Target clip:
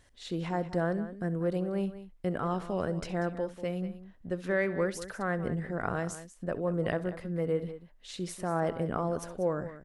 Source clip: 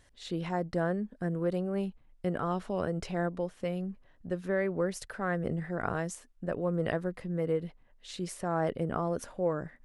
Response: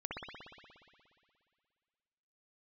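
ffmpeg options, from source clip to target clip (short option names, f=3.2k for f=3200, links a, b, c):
-filter_complex "[0:a]asettb=1/sr,asplit=3[a][b][c];[a]atrim=end=4.404[d];[b]atrim=start=4.4:end=4.92,asetpts=PTS-STARTPTS,afade=t=in:d=0.004:c=qsin,afade=t=out:st=0.516:d=0.004:c=qsin,equalizer=f=3.4k:w=0.57:g=7.5[e];[c]atrim=start=4.916[f];[d][e]acrossfade=d=0.004:c1=hsin:c2=qsin[g];[g][f]acrossfade=d=0.004:c1=qsin:c2=hsin,aecho=1:1:66|190:0.126|0.211"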